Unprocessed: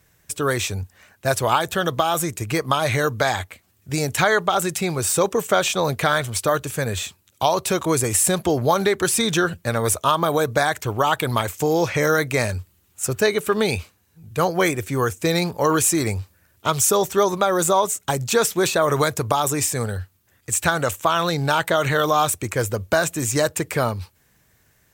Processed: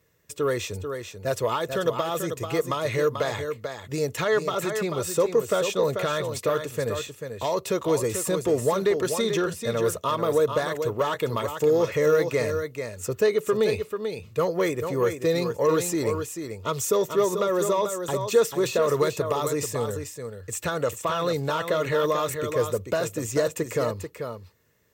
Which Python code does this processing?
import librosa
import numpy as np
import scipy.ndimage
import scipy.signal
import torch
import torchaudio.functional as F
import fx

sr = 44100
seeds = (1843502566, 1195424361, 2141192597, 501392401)

y = fx.peak_eq(x, sr, hz=10000.0, db=-7.0, octaves=0.56)
y = y + 10.0 ** (-8.0 / 20.0) * np.pad(y, (int(439 * sr / 1000.0), 0))[:len(y)]
y = 10.0 ** (-10.5 / 20.0) * np.tanh(y / 10.0 ** (-10.5 / 20.0))
y = fx.peak_eq(y, sr, hz=470.0, db=8.5, octaves=0.53)
y = fx.notch_comb(y, sr, f0_hz=770.0)
y = y * 10.0 ** (-6.0 / 20.0)